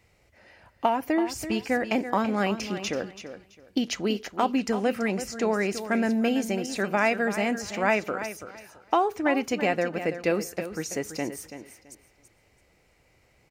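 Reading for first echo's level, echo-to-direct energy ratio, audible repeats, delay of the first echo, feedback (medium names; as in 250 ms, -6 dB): -11.0 dB, -11.0 dB, 2, 332 ms, 22%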